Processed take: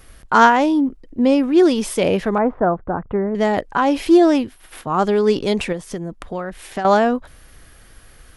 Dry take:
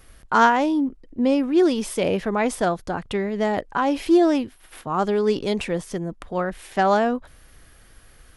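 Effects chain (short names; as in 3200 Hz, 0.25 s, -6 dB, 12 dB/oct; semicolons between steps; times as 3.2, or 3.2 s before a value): 2.38–3.35 LPF 1400 Hz 24 dB/oct; 5.72–6.85 compressor 5:1, threshold -28 dBFS, peak gain reduction 11.5 dB; gain +4.5 dB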